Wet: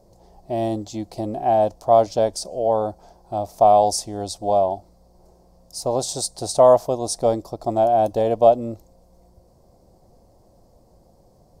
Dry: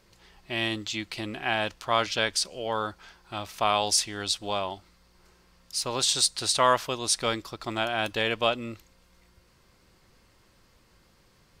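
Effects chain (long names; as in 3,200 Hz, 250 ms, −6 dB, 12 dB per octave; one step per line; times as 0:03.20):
drawn EQ curve 410 Hz 0 dB, 700 Hz +9 dB, 1,400 Hz −22 dB, 2,800 Hz −26 dB, 5,300 Hz −10 dB, 13,000 Hz −7 dB
level +7.5 dB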